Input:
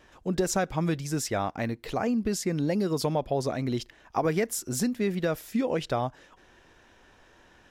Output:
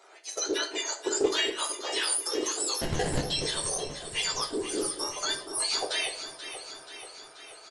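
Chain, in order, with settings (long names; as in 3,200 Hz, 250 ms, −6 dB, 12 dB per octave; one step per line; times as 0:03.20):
frequency axis turned over on the octave scale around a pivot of 1,500 Hz
Butterworth high-pass 390 Hz 36 dB per octave
transient designer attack −5 dB, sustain −9 dB
brickwall limiter −26.5 dBFS, peak gain reduction 7 dB
0:00.78–0:01.40: transient designer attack +10 dB, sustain −6 dB
0:02.81–0:03.25: sample-rate reduction 1,200 Hz, jitter 0%
delay that swaps between a low-pass and a high-pass 241 ms, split 1,100 Hz, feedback 79%, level −9 dB
on a send at −3.5 dB: convolution reverb RT60 0.40 s, pre-delay 7 ms
on the sum: downsampling to 22,050 Hz
highs frequency-modulated by the lows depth 0.17 ms
level +6 dB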